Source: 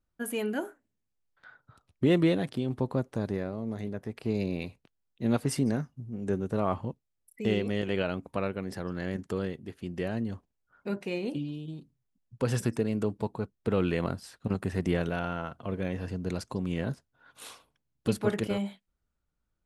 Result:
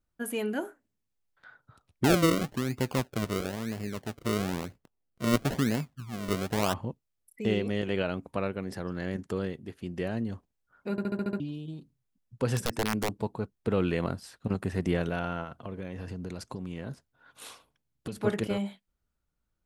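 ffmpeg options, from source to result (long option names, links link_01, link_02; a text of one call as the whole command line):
ffmpeg -i in.wav -filter_complex "[0:a]asettb=1/sr,asplit=3[link_01][link_02][link_03];[link_01]atrim=end=2.044[link_04];[link_02]atrim=start=2.04:end=6.74,asetpts=PTS-STARTPTS,afade=type=in:duration=0.004:curve=qsin,afade=type=out:start_time=4.696:duration=0.004:curve=qsin,acrusher=samples=36:mix=1:aa=0.000001:lfo=1:lforange=36:lforate=1[link_05];[link_03]atrim=start=6.736[link_06];[link_04][link_05]acrossfade=duration=0.004:curve1=hsin:curve2=qsin[link_07];[link_07][link_06]acrossfade=duration=0.004:curve1=qsin:curve2=hsin,asettb=1/sr,asplit=3[link_08][link_09][link_10];[link_08]atrim=end=12.564[link_11];[link_09]atrim=start=12.56:end=13.15,asetpts=PTS-STARTPTS,afade=type=in:duration=0.004:curve=qsin,afade=type=out:start_time=0.586:duration=0.004:curve=qsin,aeval=exprs='(mod(10.6*val(0)+1,2)-1)/10.6':channel_layout=same[link_12];[link_10]atrim=start=13.146[link_13];[link_11][link_12]acrossfade=duration=0.004:curve1=hsin:curve2=qsin[link_14];[link_14][link_13]acrossfade=duration=0.004:curve1=qsin:curve2=hsin,asplit=3[link_15][link_16][link_17];[link_15]afade=type=out:start_time=15.43:duration=0.02[link_18];[link_16]acompressor=threshold=-33dB:ratio=4:attack=3.2:release=140:knee=1:detection=peak,afade=type=in:start_time=15.43:duration=0.02,afade=type=out:start_time=18.16:duration=0.02[link_19];[link_17]afade=type=in:start_time=18.16:duration=0.02[link_20];[link_18][link_19][link_20]amix=inputs=3:normalize=0,asplit=8[link_21][link_22][link_23][link_24][link_25][link_26][link_27][link_28];[link_21]atrim=end=10.982[link_29];[link_22]atrim=start=10.908:end=10.982[link_30];[link_23]atrim=start=10.908:end=10.982[link_31];[link_24]atrim=start=10.908:end=10.982[link_32];[link_25]atrim=start=10.908:end=10.982[link_33];[link_26]atrim=start=10.908:end=10.982[link_34];[link_27]atrim=start=10.908:end=10.982[link_35];[link_28]atrim=start=11.398[link_36];[link_29][link_30]acrossfade=duration=0.004:curve1=hsin:curve2=hsin[link_37];[link_37][link_31]acrossfade=duration=0.004:curve1=hsin:curve2=hsin[link_38];[link_38][link_32]acrossfade=duration=0.004:curve1=hsin:curve2=hsin[link_39];[link_39][link_33]acrossfade=duration=0.004:curve1=hsin:curve2=hsin[link_40];[link_40][link_34]acrossfade=duration=0.004:curve1=hsin:curve2=hsin[link_41];[link_41][link_35]acrossfade=duration=0.004:curve1=hsin:curve2=hsin[link_42];[link_42][link_36]acrossfade=duration=0.004:curve1=hsin:curve2=hsin" out.wav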